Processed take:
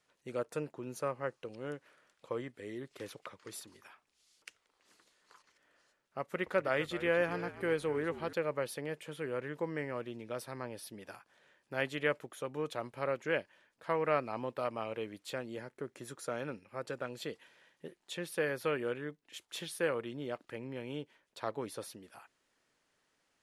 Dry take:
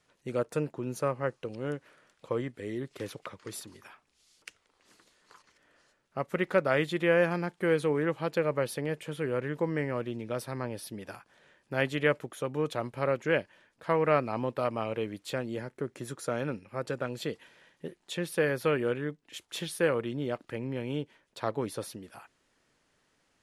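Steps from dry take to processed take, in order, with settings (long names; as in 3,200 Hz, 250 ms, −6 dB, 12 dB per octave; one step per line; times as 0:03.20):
low-shelf EQ 250 Hz −7.5 dB
0:06.21–0:08.33: echo with shifted repeats 252 ms, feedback 33%, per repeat −57 Hz, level −14 dB
level −4.5 dB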